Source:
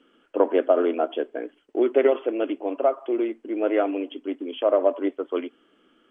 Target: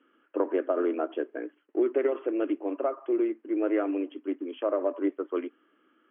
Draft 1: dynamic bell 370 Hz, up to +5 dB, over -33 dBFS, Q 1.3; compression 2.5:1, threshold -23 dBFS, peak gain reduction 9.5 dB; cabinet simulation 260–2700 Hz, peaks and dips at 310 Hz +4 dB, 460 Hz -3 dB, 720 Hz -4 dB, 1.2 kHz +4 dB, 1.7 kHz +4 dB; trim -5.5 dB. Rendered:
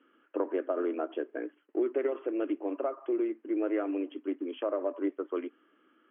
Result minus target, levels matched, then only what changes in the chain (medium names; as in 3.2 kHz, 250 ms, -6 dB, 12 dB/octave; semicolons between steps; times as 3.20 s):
compression: peak gain reduction +4 dB
change: compression 2.5:1, threshold -16 dBFS, peak gain reduction 5.5 dB